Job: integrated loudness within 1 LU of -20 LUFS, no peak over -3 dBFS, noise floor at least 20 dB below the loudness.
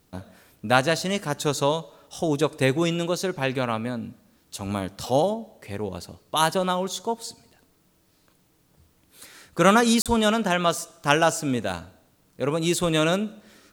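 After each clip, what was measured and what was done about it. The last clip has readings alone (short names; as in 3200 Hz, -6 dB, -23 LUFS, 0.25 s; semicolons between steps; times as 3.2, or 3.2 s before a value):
dropouts 1; longest dropout 37 ms; loudness -24.0 LUFS; peak -2.5 dBFS; loudness target -20.0 LUFS
-> interpolate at 10.02, 37 ms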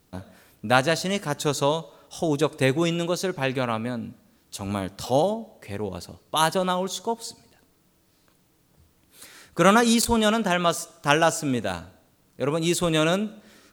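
dropouts 0; loudness -24.0 LUFS; peak -2.5 dBFS; loudness target -20.0 LUFS
-> gain +4 dB; limiter -3 dBFS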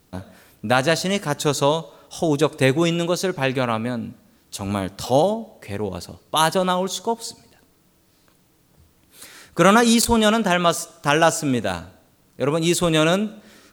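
loudness -20.5 LUFS; peak -3.0 dBFS; noise floor -59 dBFS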